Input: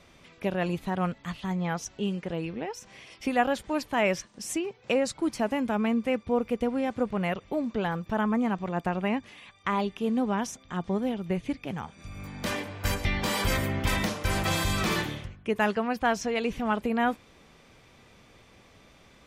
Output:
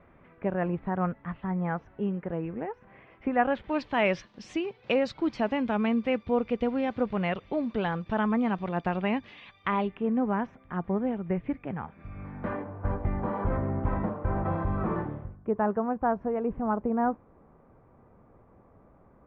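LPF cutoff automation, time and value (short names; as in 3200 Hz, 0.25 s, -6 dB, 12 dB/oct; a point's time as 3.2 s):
LPF 24 dB/oct
3.31 s 1800 Hz
3.84 s 4200 Hz
9.53 s 4200 Hz
10.06 s 2000 Hz
12.16 s 2000 Hz
12.75 s 1200 Hz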